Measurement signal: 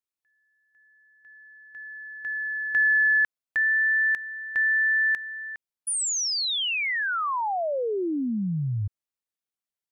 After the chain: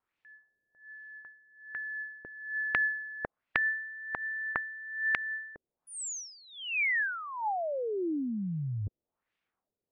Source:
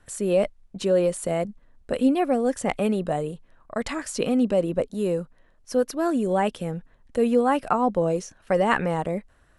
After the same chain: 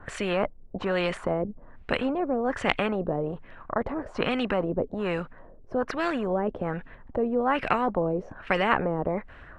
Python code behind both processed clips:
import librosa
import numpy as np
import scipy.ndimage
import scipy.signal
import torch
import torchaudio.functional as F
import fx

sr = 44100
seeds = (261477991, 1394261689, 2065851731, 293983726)

y = fx.filter_lfo_lowpass(x, sr, shape='sine', hz=1.2, low_hz=420.0, high_hz=2600.0, q=1.9)
y = fx.spectral_comp(y, sr, ratio=2.0)